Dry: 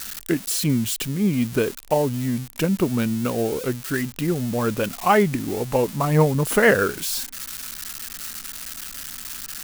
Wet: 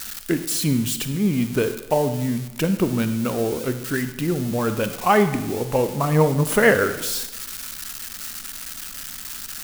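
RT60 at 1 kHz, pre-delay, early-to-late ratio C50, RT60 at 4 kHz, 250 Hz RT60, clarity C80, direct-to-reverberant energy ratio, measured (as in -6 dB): 1.0 s, 37 ms, 11.0 dB, 0.85 s, 1.0 s, 13.0 dB, 10.0 dB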